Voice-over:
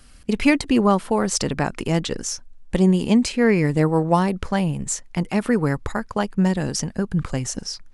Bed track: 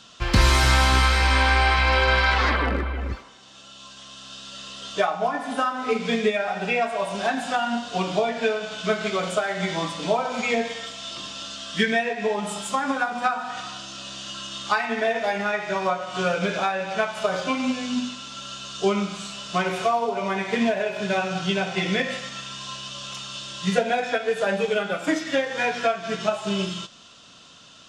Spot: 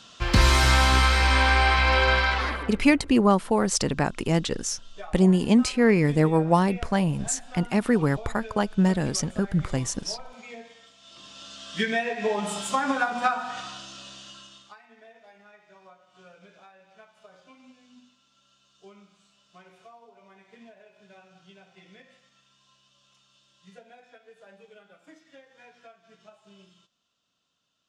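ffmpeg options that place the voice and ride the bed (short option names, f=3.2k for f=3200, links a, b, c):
-filter_complex "[0:a]adelay=2400,volume=-2dB[a];[1:a]volume=17.5dB,afade=t=out:st=2.08:d=0.71:silence=0.125893,afade=t=in:st=11:d=1.47:silence=0.11885,afade=t=out:st=13.24:d=1.51:silence=0.0398107[b];[a][b]amix=inputs=2:normalize=0"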